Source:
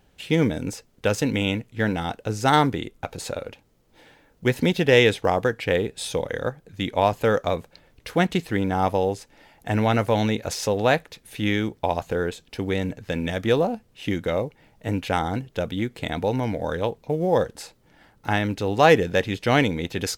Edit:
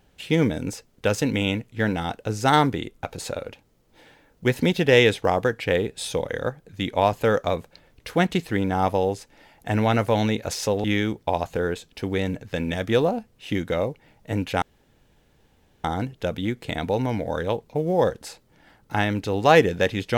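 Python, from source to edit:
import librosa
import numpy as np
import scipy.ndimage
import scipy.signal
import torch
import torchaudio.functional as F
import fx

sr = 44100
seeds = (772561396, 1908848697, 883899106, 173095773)

y = fx.edit(x, sr, fx.cut(start_s=10.84, length_s=0.56),
    fx.insert_room_tone(at_s=15.18, length_s=1.22), tone=tone)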